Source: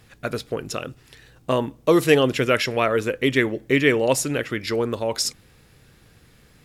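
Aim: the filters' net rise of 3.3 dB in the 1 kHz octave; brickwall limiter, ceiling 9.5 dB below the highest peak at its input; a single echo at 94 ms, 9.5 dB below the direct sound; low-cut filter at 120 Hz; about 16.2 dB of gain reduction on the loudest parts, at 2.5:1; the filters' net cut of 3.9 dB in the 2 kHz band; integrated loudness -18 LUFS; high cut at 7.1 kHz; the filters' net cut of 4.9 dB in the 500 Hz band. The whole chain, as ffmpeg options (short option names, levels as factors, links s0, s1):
-af "highpass=120,lowpass=7100,equalizer=f=500:t=o:g=-7.5,equalizer=f=1000:t=o:g=8,equalizer=f=2000:t=o:g=-6.5,acompressor=threshold=0.00891:ratio=2.5,alimiter=level_in=1.78:limit=0.0631:level=0:latency=1,volume=0.562,aecho=1:1:94:0.335,volume=14.1"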